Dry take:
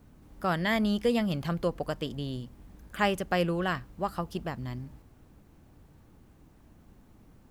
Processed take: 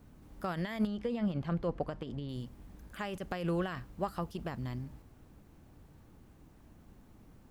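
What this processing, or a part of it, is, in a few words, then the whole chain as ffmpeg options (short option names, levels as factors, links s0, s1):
de-esser from a sidechain: -filter_complex "[0:a]asplit=2[s0][s1];[s1]highpass=4500,apad=whole_len=331159[s2];[s0][s2]sidechaincompress=threshold=0.00141:ratio=3:attack=4.4:release=28,asettb=1/sr,asplit=3[s3][s4][s5];[s3]atrim=end=0.874[s6];[s4]atrim=start=0.87:end=2.29,asetpts=PTS-STARTPTS,afade=t=in:d=0.004:c=qsin,afade=t=out:st=1.416:d=0.004:c=qsin,aemphasis=mode=reproduction:type=75fm[s7];[s5]atrim=start=2.286[s8];[s6][s7]acrossfade=d=0.004:c1=hsin:c2=qsin[s9];[s9][s8]acrossfade=d=0.004:c1=qsin:c2=hsin,volume=0.891"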